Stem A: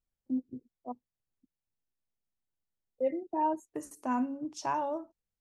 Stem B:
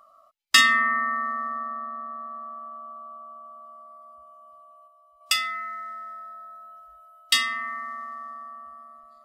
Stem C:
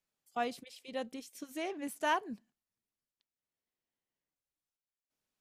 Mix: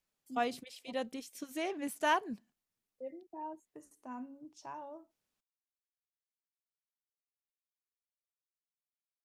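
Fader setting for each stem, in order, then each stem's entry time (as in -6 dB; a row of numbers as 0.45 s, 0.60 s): -14.0 dB, mute, +1.5 dB; 0.00 s, mute, 0.00 s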